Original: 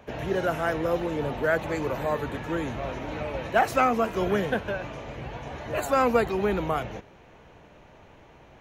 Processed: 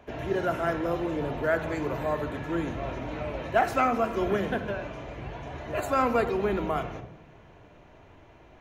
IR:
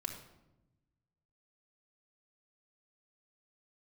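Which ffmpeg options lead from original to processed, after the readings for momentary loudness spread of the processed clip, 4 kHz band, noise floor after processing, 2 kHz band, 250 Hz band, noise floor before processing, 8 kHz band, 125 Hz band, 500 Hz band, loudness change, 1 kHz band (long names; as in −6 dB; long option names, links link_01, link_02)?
14 LU, −3.5 dB, −53 dBFS, −3.0 dB, −1.0 dB, −53 dBFS, −5.0 dB, −1.5 dB, −2.0 dB, −1.5 dB, −1.5 dB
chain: -filter_complex "[0:a]asplit=2[link_01][link_02];[link_02]highshelf=frequency=6000:gain=-10.5[link_03];[1:a]atrim=start_sample=2205[link_04];[link_03][link_04]afir=irnorm=-1:irlink=0,volume=3dB[link_05];[link_01][link_05]amix=inputs=2:normalize=0,volume=-8.5dB"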